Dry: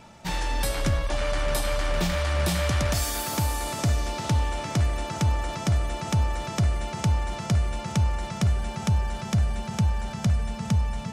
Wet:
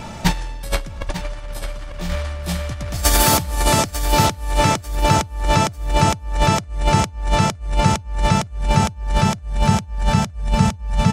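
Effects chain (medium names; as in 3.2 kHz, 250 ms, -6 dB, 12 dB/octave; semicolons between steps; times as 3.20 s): bass shelf 99 Hz +8 dB; compressor with a negative ratio -27 dBFS, ratio -0.5; on a send: feedback delay 895 ms, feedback 28%, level -11 dB; on the sum: trim +8 dB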